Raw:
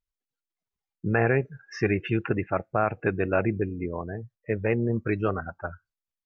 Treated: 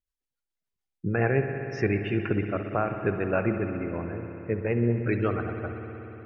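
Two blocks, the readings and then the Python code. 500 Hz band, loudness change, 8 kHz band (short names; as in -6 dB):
-1.0 dB, -1.0 dB, n/a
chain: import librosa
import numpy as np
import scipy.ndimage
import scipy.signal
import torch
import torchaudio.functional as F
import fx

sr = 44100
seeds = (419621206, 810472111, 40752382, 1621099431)

y = fx.rotary_switch(x, sr, hz=7.0, then_hz=0.65, switch_at_s=2.08)
y = fx.rev_spring(y, sr, rt60_s=3.9, pass_ms=(59,), chirp_ms=35, drr_db=5.5)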